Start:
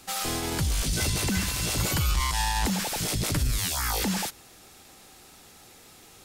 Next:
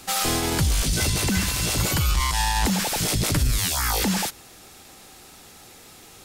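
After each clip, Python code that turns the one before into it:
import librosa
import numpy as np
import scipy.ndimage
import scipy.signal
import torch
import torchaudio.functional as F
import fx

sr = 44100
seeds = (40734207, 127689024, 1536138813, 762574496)

y = fx.rider(x, sr, range_db=10, speed_s=0.5)
y = F.gain(torch.from_numpy(y), 4.5).numpy()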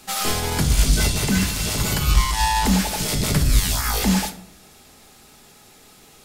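y = fx.room_shoebox(x, sr, seeds[0], volume_m3=780.0, walls='furnished', distance_m=1.4)
y = fx.upward_expand(y, sr, threshold_db=-27.0, expansion=1.5)
y = F.gain(torch.from_numpy(y), 3.0).numpy()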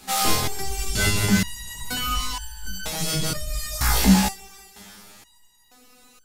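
y = fx.echo_split(x, sr, split_hz=750.0, low_ms=177, high_ms=356, feedback_pct=52, wet_db=-16.0)
y = fx.resonator_held(y, sr, hz=2.1, low_hz=65.0, high_hz=1500.0)
y = F.gain(torch.from_numpy(y), 9.0).numpy()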